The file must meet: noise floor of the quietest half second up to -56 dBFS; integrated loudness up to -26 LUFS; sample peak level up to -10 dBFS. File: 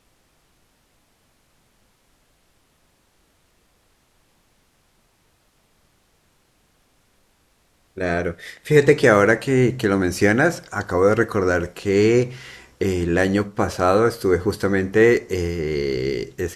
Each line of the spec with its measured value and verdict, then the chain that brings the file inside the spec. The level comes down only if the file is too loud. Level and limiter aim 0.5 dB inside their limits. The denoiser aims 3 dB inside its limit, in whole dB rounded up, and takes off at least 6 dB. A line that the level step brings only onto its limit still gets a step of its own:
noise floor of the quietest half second -62 dBFS: pass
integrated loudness -19.5 LUFS: fail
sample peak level -1.5 dBFS: fail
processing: trim -7 dB; peak limiter -10.5 dBFS

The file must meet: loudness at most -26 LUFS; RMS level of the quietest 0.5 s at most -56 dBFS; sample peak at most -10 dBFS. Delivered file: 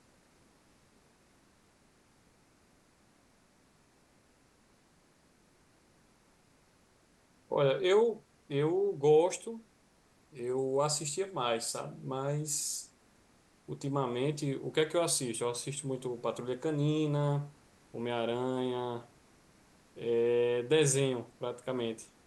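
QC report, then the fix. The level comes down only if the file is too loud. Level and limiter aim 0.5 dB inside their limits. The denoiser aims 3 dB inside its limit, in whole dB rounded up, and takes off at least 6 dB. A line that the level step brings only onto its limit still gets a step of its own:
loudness -32.0 LUFS: pass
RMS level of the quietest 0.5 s -66 dBFS: pass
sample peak -16.5 dBFS: pass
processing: none needed

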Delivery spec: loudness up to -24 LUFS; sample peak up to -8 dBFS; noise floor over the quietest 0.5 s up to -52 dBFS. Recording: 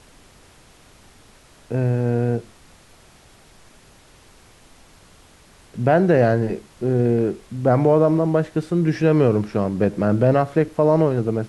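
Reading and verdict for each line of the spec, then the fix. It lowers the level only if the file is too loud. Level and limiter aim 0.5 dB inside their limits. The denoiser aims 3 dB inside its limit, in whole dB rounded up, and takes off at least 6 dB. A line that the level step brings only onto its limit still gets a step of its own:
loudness -19.5 LUFS: fail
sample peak -5.5 dBFS: fail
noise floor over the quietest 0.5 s -50 dBFS: fail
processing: trim -5 dB

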